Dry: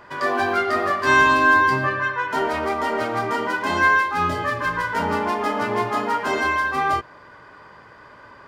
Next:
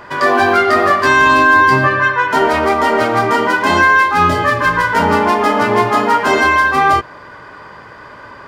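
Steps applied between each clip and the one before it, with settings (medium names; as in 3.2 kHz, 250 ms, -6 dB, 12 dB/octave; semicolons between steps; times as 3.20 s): loudness maximiser +11 dB; trim -1 dB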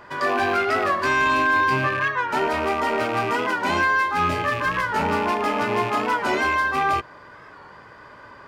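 rattle on loud lows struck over -24 dBFS, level -12 dBFS; saturation -1.5 dBFS, distortion -25 dB; warped record 45 rpm, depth 100 cents; trim -9 dB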